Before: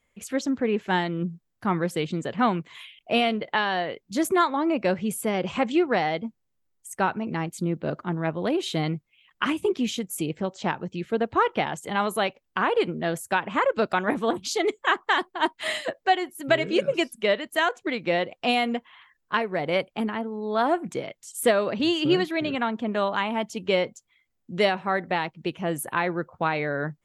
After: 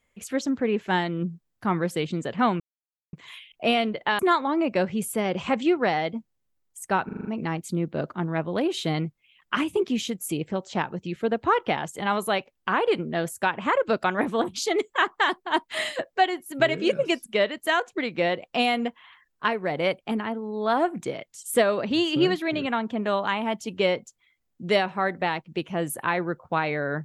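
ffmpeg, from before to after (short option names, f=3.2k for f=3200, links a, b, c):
-filter_complex "[0:a]asplit=8[a][b][c][d][e][f][g][h];[a]atrim=end=2.6,asetpts=PTS-STARTPTS,afade=t=out:st=2.596:d=0.004:c=hsin,apad=pad_dur=0.53[i];[b]atrim=start=2.6:end=3.662,asetpts=PTS-STARTPTS,afade=t=in:d=0.004:c=hsin[j];[c]atrim=start=4.278:end=7.182[k];[d]atrim=start=7.138:end=7.182[l];[e]atrim=start=7.138:end=7.182[m];[f]atrim=start=7.138:end=7.182[n];[g]atrim=start=7.138:end=7.182[o];[h]atrim=start=7.138[p];[i][j]concat=n=2:v=0:a=1[q];[q][k]acrossfade=d=0.004:c1=hsin:c2=hsin[r];[r][l]acrossfade=d=0.004:c1=hsin:c2=hsin[s];[s][m]acrossfade=d=0.004:c1=hsin:c2=hsin[t];[t][n]acrossfade=d=0.004:c1=hsin:c2=hsin[u];[u][o]acrossfade=d=0.004:c1=hsin:c2=hsin[v];[v][p]acrossfade=d=0.004:c1=hsin:c2=hsin"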